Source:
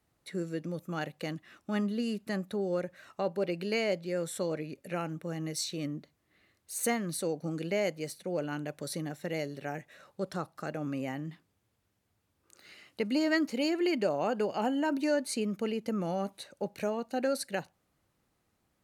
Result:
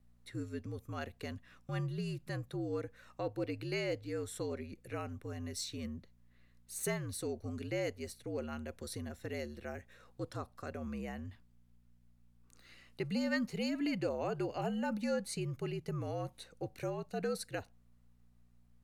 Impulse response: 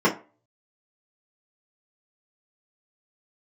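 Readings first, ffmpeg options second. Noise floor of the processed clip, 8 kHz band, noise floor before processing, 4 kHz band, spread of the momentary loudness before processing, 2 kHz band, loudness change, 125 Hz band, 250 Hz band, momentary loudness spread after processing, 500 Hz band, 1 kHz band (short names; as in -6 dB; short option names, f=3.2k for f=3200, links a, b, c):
-66 dBFS, -6.0 dB, -77 dBFS, -6.5 dB, 10 LU, -6.0 dB, -6.0 dB, -0.5 dB, -6.5 dB, 10 LU, -7.0 dB, -7.5 dB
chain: -af "aeval=exprs='val(0)+0.00158*(sin(2*PI*60*n/s)+sin(2*PI*2*60*n/s)/2+sin(2*PI*3*60*n/s)/3+sin(2*PI*4*60*n/s)/4+sin(2*PI*5*60*n/s)/5)':c=same,afreqshift=-63,volume=-6dB"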